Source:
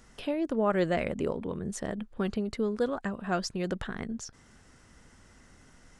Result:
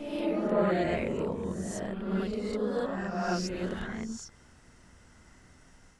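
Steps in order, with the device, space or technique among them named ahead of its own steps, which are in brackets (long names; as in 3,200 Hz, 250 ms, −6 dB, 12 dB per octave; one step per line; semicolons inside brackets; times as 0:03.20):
reverse reverb (reversed playback; convolution reverb RT60 1.2 s, pre-delay 20 ms, DRR −4 dB; reversed playback)
level −5.5 dB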